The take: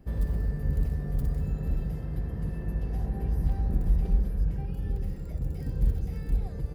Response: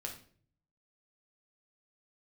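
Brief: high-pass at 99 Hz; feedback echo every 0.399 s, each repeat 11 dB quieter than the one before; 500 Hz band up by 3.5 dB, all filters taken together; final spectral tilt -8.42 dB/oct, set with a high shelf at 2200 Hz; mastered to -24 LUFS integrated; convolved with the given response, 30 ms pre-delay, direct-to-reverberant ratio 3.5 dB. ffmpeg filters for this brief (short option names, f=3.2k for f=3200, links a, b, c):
-filter_complex "[0:a]highpass=99,equalizer=f=500:t=o:g=4,highshelf=f=2.2k:g=5.5,aecho=1:1:399|798|1197:0.282|0.0789|0.0221,asplit=2[a][b];[1:a]atrim=start_sample=2205,adelay=30[c];[b][c]afir=irnorm=-1:irlink=0,volume=-2dB[d];[a][d]amix=inputs=2:normalize=0,volume=9.5dB"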